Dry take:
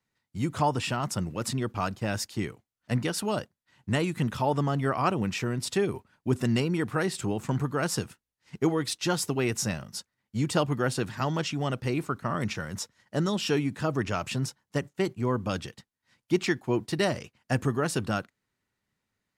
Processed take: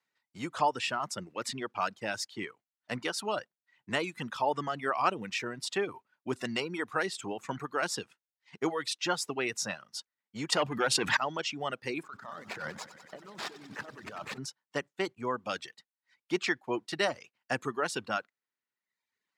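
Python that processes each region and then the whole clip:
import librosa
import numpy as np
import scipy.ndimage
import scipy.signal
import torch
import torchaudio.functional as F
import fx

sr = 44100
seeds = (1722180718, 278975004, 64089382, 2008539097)

y = fx.chain(x, sr, fx.clip_hard(threshold_db=-20.0),
    fx.env_flatten(amount_pct=100), at=(10.52, 11.17))
y = fx.chain(y, sr, fx.median_filter(points=15),
    fx.over_compress(threshold_db=-38.0, ratio=-1.0),
    fx.echo_crushed(ms=94, feedback_pct=80, bits=9, wet_db=-7.5), at=(12.03, 14.38))
y = fx.high_shelf(y, sr, hz=8800.0, db=-9.0)
y = fx.dereverb_blind(y, sr, rt60_s=1.0)
y = fx.weighting(y, sr, curve='A')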